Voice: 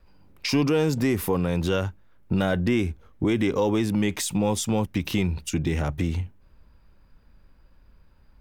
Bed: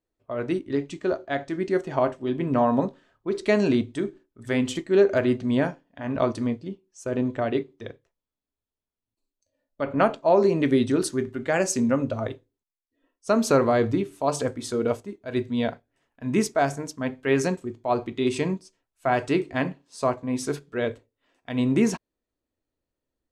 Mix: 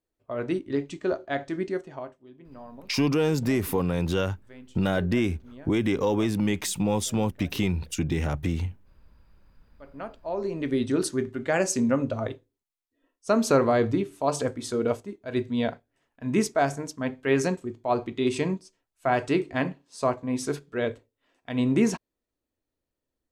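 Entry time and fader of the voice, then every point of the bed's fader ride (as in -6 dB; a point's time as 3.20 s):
2.45 s, -1.5 dB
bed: 1.60 s -1.5 dB
2.29 s -23.5 dB
9.64 s -23.5 dB
11.02 s -1 dB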